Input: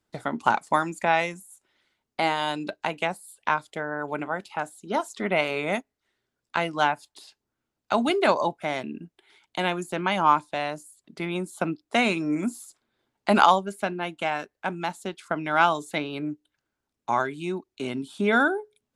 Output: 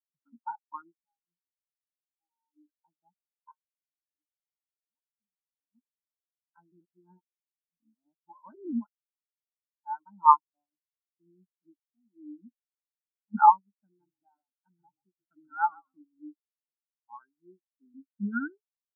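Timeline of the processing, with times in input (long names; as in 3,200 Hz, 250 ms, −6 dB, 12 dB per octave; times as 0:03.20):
0:01.02–0:02.67: downward compressor 8 to 1, threshold −29 dBFS
0:03.51–0:05.75: downward compressor 2 to 1, threshold −44 dBFS
0:06.72–0:10.06: reverse
0:10.64–0:13.35: downward compressor 8 to 1, threshold −26 dBFS
0:13.86–0:16.03: echo with shifted repeats 132 ms, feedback 37%, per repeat −35 Hz, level −6 dB
whole clip: Chebyshev low-pass filter 1,600 Hz, order 8; flat-topped bell 550 Hz −8.5 dB 1.1 octaves; every bin expanded away from the loudest bin 4 to 1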